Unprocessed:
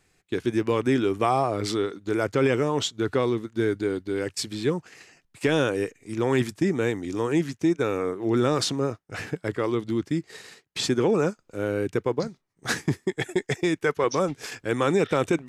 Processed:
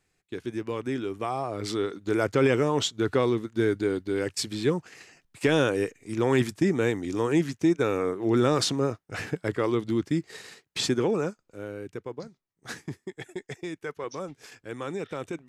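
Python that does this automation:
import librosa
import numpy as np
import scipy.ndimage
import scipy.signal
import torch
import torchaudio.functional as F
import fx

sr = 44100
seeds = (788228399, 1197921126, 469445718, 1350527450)

y = fx.gain(x, sr, db=fx.line((1.38, -8.0), (1.97, 0.0), (10.78, 0.0), (11.79, -11.5)))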